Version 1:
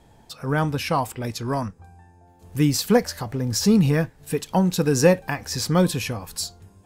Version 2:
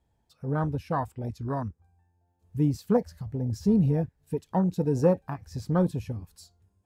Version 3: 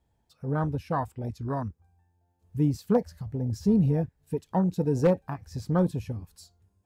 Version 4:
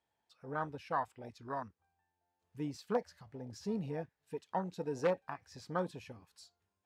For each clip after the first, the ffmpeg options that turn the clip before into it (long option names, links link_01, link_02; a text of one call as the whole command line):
ffmpeg -i in.wav -af "afwtdn=0.0631,equalizer=frequency=66:width=1.2:gain=10,volume=-6dB" out.wav
ffmpeg -i in.wav -af "aeval=exprs='0.251*(abs(mod(val(0)/0.251+3,4)-2)-1)':channel_layout=same" out.wav
ffmpeg -i in.wav -af "bandpass=frequency=2100:width_type=q:width=0.53:csg=0,volume=-1.5dB" out.wav